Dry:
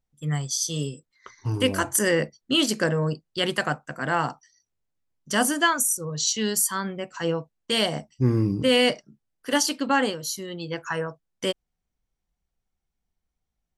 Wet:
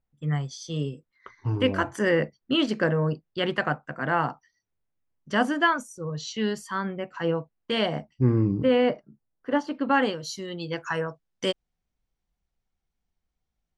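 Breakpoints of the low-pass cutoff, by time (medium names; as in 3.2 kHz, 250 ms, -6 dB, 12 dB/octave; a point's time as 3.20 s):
8.10 s 2.5 kHz
8.90 s 1.3 kHz
9.74 s 1.3 kHz
9.97 s 2.9 kHz
10.52 s 6.3 kHz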